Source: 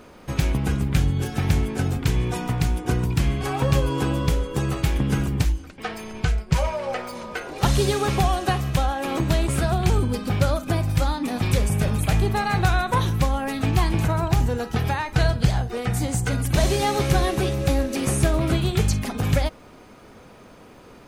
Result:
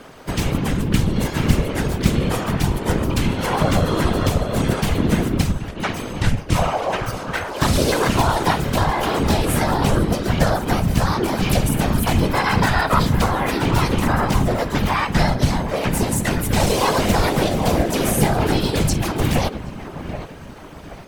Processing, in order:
low-shelf EQ 250 Hz −3 dB
in parallel at −2 dB: brickwall limiter −17 dBFS, peak gain reduction 9 dB
on the sum: delay with a low-pass on its return 774 ms, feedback 38%, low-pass 2,100 Hz, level −11.5 dB
pitch-shifted copies added +4 semitones 0 dB
random phases in short frames
level −2 dB

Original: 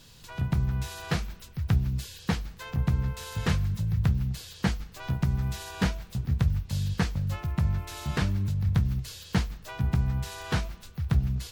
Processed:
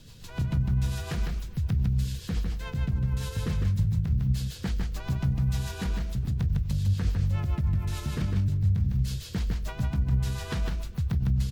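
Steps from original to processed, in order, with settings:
low-shelf EQ 300 Hz +7 dB
brickwall limiter −21.5 dBFS, peak gain reduction 14 dB
rotating-speaker cabinet horn 7 Hz
on a send: single-tap delay 154 ms −4 dB
on the sum: level +1.5 dB

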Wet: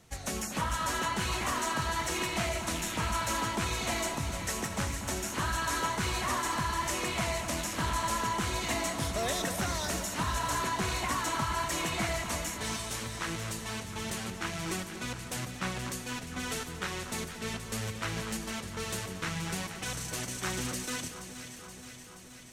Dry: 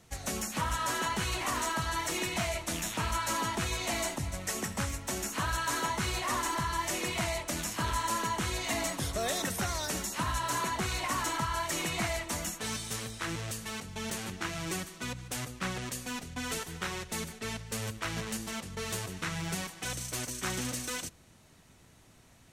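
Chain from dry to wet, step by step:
delay that swaps between a low-pass and a high-pass 238 ms, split 1,500 Hz, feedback 82%, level −8.5 dB
highs frequency-modulated by the lows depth 0.12 ms

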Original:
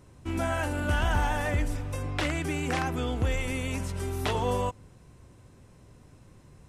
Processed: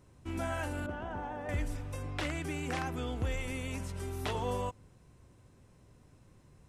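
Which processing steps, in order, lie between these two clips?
0:00.86–0:01.49: resonant band-pass 400 Hz, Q 0.71
level −6.5 dB

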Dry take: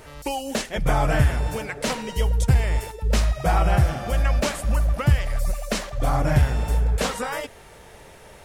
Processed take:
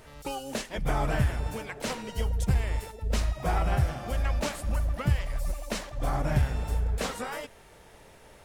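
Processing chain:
pitch-shifted copies added −12 semitones −12 dB, +7 semitones −13 dB
level −7.5 dB

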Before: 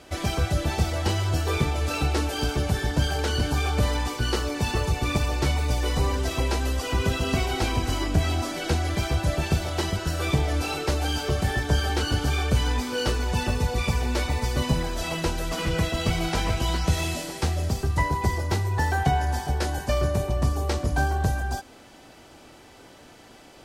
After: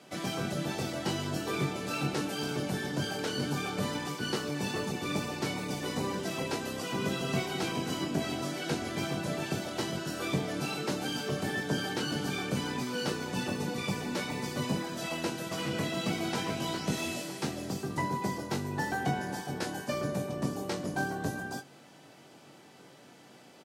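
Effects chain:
sub-octave generator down 1 octave, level +3 dB
high-pass filter 150 Hz 24 dB per octave
double-tracking delay 21 ms −8 dB
level −6.5 dB

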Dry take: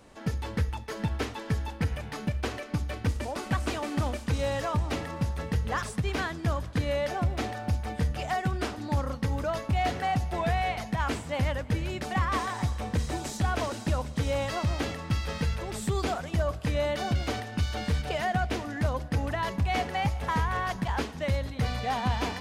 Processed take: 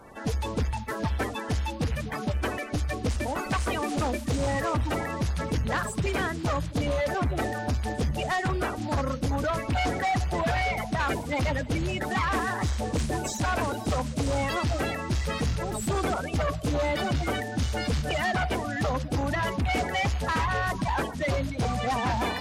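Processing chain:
spectral magnitudes quantised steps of 30 dB
sine wavefolder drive 8 dB, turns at −15.5 dBFS
harmonic generator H 5 −34 dB, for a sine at −15 dBFS
level −6.5 dB

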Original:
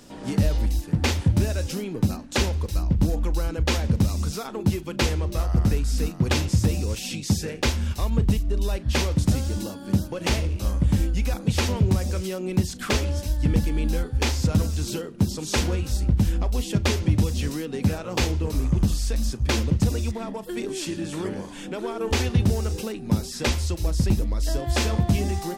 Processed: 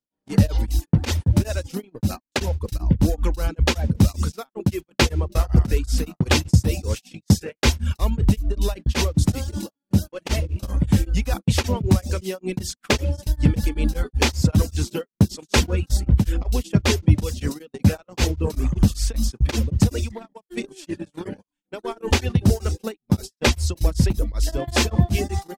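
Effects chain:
reverb reduction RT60 0.57 s
noise gate −29 dBFS, range −50 dB
tremolo along a rectified sine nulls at 5.2 Hz
level +6.5 dB

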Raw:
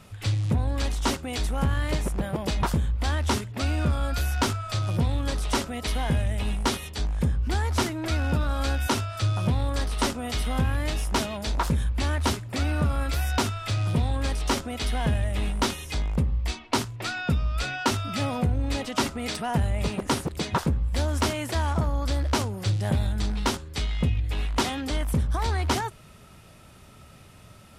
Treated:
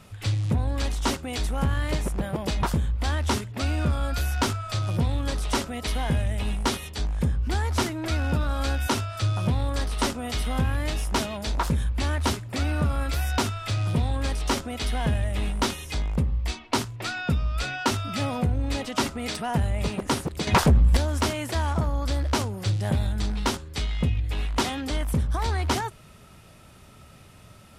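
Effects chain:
0:20.47–0:20.97: sine wavefolder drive 7 dB, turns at −12.5 dBFS

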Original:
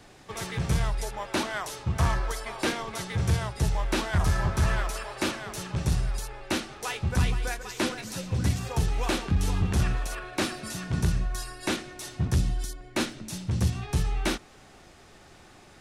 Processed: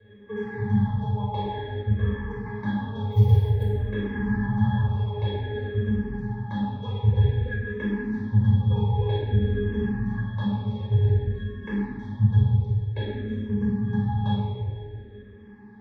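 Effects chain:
low-pass filter 3,700 Hz 12 dB per octave
low-shelf EQ 90 Hz −11.5 dB
in parallel at 0 dB: downward compressor, threshold −34 dBFS, peak gain reduction 11 dB
on the sum: transient designer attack +3 dB, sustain −10 dB
resonances in every octave G#, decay 0.19 s
0:03.11–0:03.64: floating-point word with a short mantissa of 4 bits
on a send: bucket-brigade delay 170 ms, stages 2,048, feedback 69%, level −16.5 dB
on the sum: rectangular room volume 2,200 cubic metres, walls mixed, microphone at 5.3 metres
frequency shifter mixed with the dry sound −0.53 Hz
level +6 dB

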